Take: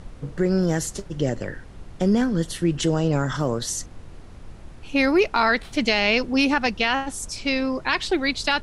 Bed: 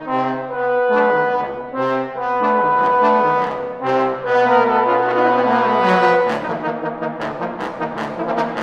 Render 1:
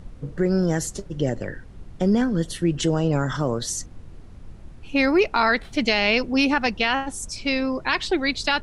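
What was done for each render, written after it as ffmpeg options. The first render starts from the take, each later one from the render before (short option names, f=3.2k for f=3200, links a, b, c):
-af "afftdn=nr=6:nf=-42"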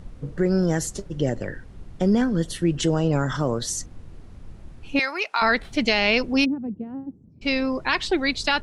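-filter_complex "[0:a]asettb=1/sr,asplit=3[a][b][c];[a]atrim=end=4.994[d];[b]atrim=start=4.99:end=5.42,asetpts=PTS-STARTPTS,afade=t=in:d=0.004:c=qsin,afade=t=out:st=0.426:d=0.004:c=qsin,highpass=950[e];[c]atrim=start=5.416[f];[d][e]acrossfade=d=0.004:c1=hsin:c2=qsin[g];[g][f]acrossfade=d=0.004:c1=qsin:c2=hsin,asplit=3[h][i][j];[h]afade=t=out:st=6.44:d=0.02[k];[i]asuperpass=centerf=190:order=4:qfactor=0.94,afade=t=in:st=6.44:d=0.02,afade=t=out:st=7.41:d=0.02[l];[j]afade=t=in:st=7.41:d=0.02[m];[k][l][m]amix=inputs=3:normalize=0"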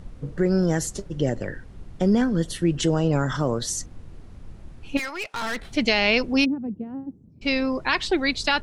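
-filter_complex "[0:a]asettb=1/sr,asplit=3[a][b][c];[a]atrim=end=4.974[d];[b]atrim=start=4.97:end=5.63,asetpts=PTS-STARTPTS,afade=t=in:d=0.004:c=qsin,afade=t=out:st=0.656:d=0.004:c=qsin,aeval=exprs='(tanh(20*val(0)+0.45)-tanh(0.45))/20':c=same[e];[c]atrim=start=5.626[f];[d][e]acrossfade=d=0.004:c1=hsin:c2=qsin[g];[g][f]acrossfade=d=0.004:c1=qsin:c2=hsin"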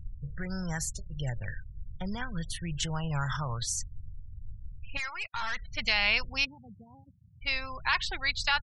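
-af "afftfilt=real='re*gte(hypot(re,im),0.0158)':imag='im*gte(hypot(re,im),0.0158)':win_size=1024:overlap=0.75,firequalizer=gain_entry='entry(100,0);entry(270,-28);entry(930,-4)':delay=0.05:min_phase=1"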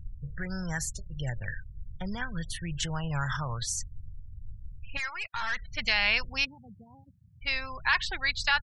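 -af "equalizer=f=1.7k:t=o:w=0.29:g=5.5"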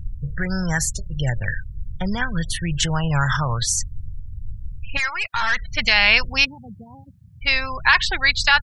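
-af "volume=11dB,alimiter=limit=-3dB:level=0:latency=1"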